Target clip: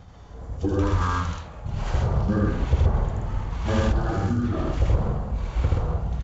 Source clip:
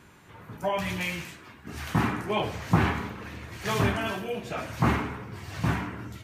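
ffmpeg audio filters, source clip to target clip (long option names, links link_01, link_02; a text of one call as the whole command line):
ffmpeg -i in.wav -filter_complex "[0:a]lowshelf=frequency=280:gain=11.5,acompressor=threshold=-21dB:ratio=6,tremolo=f=4.8:d=0.49,asetrate=22050,aresample=44100,atempo=2,asplit=2[link_01][link_02];[link_02]aecho=0:1:78.72|128.3:0.891|0.794[link_03];[link_01][link_03]amix=inputs=2:normalize=0,volume=3.5dB" out.wav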